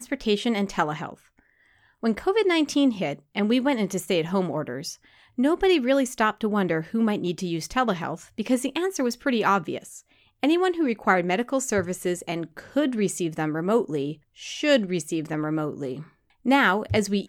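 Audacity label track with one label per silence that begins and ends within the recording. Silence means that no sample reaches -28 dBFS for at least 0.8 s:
1.100000	2.030000	silence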